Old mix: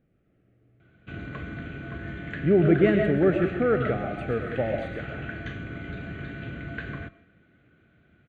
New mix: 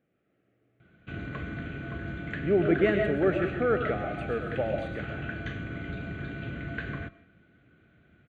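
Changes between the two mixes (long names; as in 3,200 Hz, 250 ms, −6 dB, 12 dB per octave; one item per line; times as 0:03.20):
speech: add high-pass filter 430 Hz 6 dB per octave
second sound: muted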